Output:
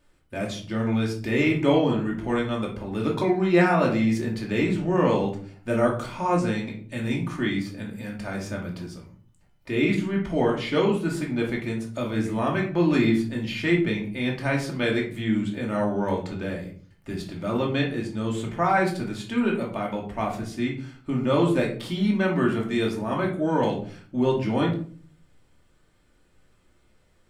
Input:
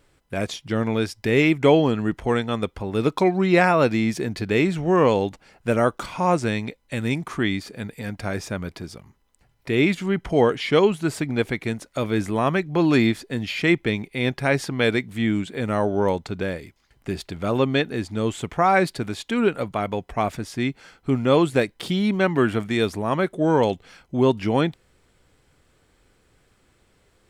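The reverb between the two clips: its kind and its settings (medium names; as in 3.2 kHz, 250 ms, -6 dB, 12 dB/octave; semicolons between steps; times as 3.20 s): simulated room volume 400 m³, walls furnished, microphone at 2.6 m; trim -8 dB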